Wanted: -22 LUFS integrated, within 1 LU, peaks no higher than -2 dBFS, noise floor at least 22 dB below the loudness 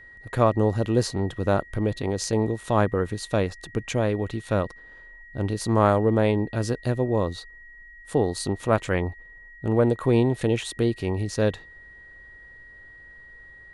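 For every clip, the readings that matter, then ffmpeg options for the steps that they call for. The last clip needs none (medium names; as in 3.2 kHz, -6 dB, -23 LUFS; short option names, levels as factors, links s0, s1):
steady tone 1.9 kHz; tone level -45 dBFS; loudness -25.0 LUFS; peak level -6.0 dBFS; loudness target -22.0 LUFS
-> -af "bandreject=f=1900:w=30"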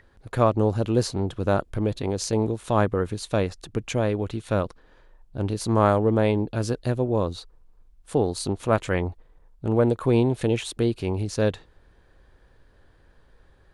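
steady tone not found; loudness -25.0 LUFS; peak level -6.0 dBFS; loudness target -22.0 LUFS
-> -af "volume=1.41"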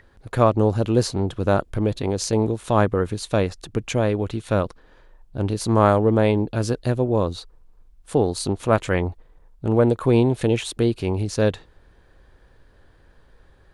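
loudness -22.0 LUFS; peak level -3.0 dBFS; noise floor -54 dBFS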